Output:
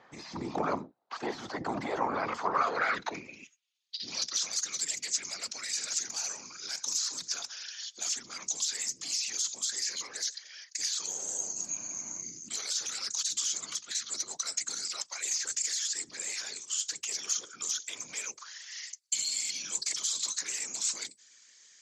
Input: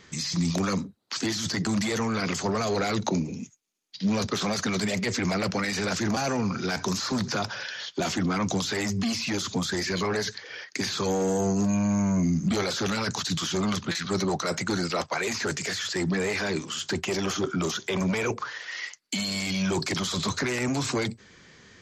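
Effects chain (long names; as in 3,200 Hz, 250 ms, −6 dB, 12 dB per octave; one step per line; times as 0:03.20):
random phases in short frames
band-pass filter sweep 800 Hz → 7,200 Hz, 0:02.14–0:04.56
level +6.5 dB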